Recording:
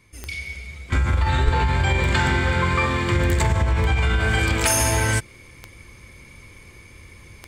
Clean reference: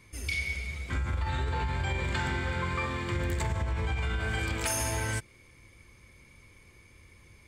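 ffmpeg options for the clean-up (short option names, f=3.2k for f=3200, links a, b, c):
-filter_complex "[0:a]adeclick=t=4,asplit=3[a][b][c];[a]afade=t=out:st=1.44:d=0.02[d];[b]highpass=f=140:w=0.5412,highpass=f=140:w=1.3066,afade=t=in:st=1.44:d=0.02,afade=t=out:st=1.56:d=0.02[e];[c]afade=t=in:st=1.56:d=0.02[f];[d][e][f]amix=inputs=3:normalize=0,asetnsamples=n=441:p=0,asendcmd='0.92 volume volume -11dB',volume=0dB"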